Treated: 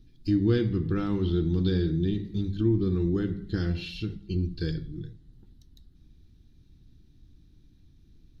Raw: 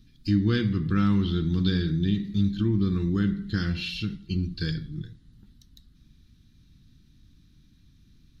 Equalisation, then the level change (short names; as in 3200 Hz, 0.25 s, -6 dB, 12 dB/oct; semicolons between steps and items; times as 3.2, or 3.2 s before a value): low shelf 150 Hz +10.5 dB; band shelf 520 Hz +10 dB; notches 50/100/150/200 Hz; -6.5 dB